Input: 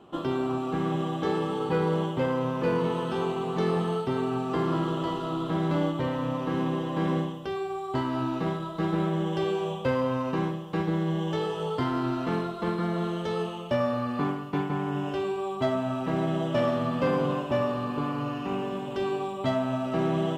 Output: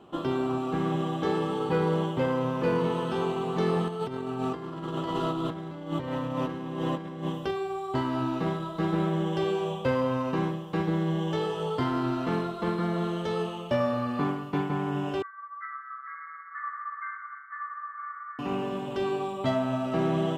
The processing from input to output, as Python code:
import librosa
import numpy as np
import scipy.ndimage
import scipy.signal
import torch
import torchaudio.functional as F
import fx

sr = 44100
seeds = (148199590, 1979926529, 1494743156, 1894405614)

y = fx.over_compress(x, sr, threshold_db=-31.0, ratio=-0.5, at=(3.88, 7.51))
y = fx.brickwall_bandpass(y, sr, low_hz=1100.0, high_hz=2200.0, at=(15.22, 18.39))